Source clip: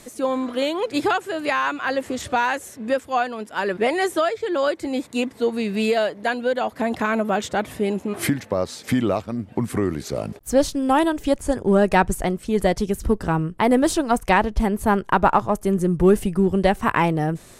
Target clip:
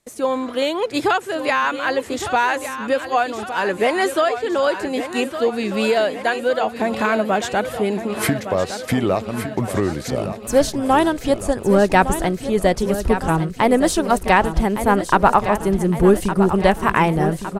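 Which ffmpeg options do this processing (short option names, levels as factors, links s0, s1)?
-filter_complex "[0:a]agate=range=0.0501:threshold=0.00891:ratio=16:detection=peak,equalizer=f=250:t=o:w=0.77:g=-3.5,asplit=2[s0][s1];[s1]aecho=0:1:1161|2322|3483|4644|5805|6966|8127:0.299|0.179|0.107|0.0645|0.0387|0.0232|0.0139[s2];[s0][s2]amix=inputs=2:normalize=0,volume=1.41"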